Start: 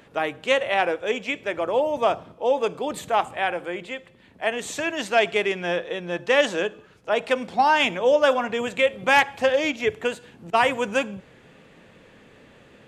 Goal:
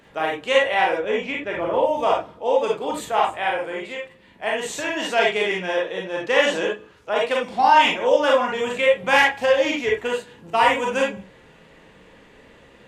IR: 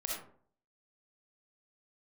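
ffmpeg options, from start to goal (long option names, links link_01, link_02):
-filter_complex "[0:a]asettb=1/sr,asplit=3[link_01][link_02][link_03];[link_01]atrim=end=0.974[link_04];[link_02]atrim=start=0.97:end=1.83,asetpts=PTS-STARTPTS,afade=type=in:duration=0.004:curve=qsin,afade=type=out:start_time=0.856:duration=0.004:curve=qsin,bass=frequency=250:gain=6,treble=frequency=4000:gain=-10[link_05];[link_03]atrim=start=1.826[link_06];[link_04][link_05]acrossfade=duration=0.004:curve1=hsin:curve2=qsin[link_07];[link_07][link_06]acrossfade=duration=0.004:curve1=qsin:curve2=hsin[link_08];[1:a]atrim=start_sample=2205,atrim=end_sample=6615,asetrate=66150,aresample=44100[link_09];[link_08][link_09]afir=irnorm=-1:irlink=0,volume=4dB"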